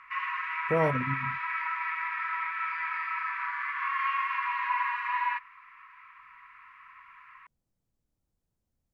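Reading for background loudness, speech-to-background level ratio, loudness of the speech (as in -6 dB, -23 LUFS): -31.0 LUFS, 0.5 dB, -30.5 LUFS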